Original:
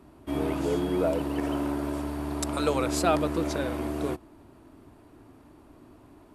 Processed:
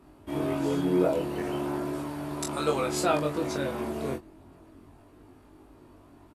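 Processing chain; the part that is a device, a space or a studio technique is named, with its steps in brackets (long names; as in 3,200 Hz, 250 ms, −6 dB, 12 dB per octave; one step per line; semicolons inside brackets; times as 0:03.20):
double-tracked vocal (double-tracking delay 22 ms −6 dB; chorus effect 0.36 Hz, delay 19.5 ms, depth 3 ms)
level +1.5 dB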